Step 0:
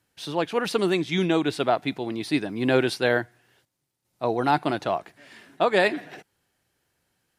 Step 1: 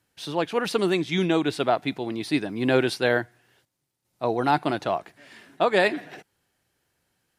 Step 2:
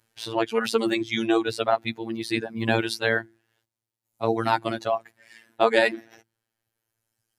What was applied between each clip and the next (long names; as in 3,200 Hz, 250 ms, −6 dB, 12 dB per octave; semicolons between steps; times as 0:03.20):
no processing that can be heard
mains-hum notches 50/100/150/200/250/300/350 Hz; reverb reduction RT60 2 s; phases set to zero 113 Hz; level +4 dB